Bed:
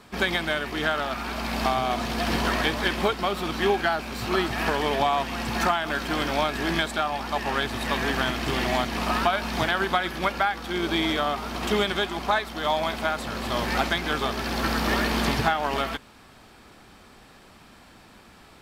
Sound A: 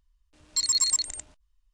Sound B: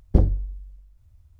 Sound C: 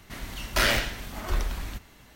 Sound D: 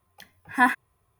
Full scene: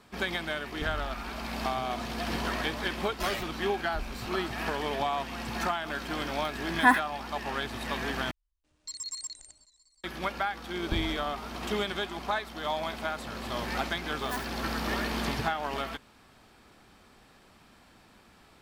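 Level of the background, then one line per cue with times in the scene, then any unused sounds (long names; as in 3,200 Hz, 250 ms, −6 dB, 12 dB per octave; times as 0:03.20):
bed −7 dB
0:00.67: mix in B −9.5 dB + downward compressor, threshold −22 dBFS
0:02.64: mix in C −9 dB + spectral dynamics exaggerated over time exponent 2
0:06.25: mix in D −1 dB
0:08.31: overwrite with A −14.5 dB + feedback echo with a swinging delay time 184 ms, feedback 75%, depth 121 cents, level −23 dB
0:10.77: mix in B −15.5 dB
0:13.71: mix in D −17 dB + converter with an unsteady clock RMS 0.06 ms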